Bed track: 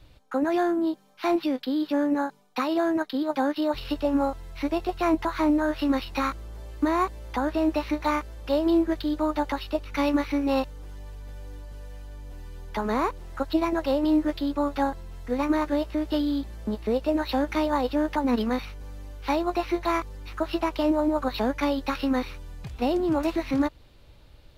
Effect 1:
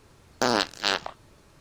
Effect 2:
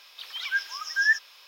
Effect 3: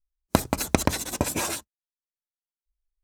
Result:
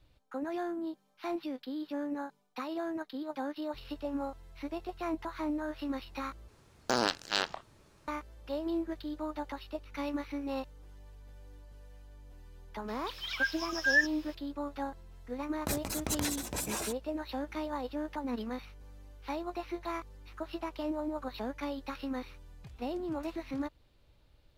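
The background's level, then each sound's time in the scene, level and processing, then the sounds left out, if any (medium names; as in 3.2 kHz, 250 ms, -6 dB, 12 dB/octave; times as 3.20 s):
bed track -12 dB
6.48 s: replace with 1 -6 dB
12.88 s: add 2 -4 dB
15.32 s: add 3 -8 dB + transient shaper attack -10 dB, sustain +6 dB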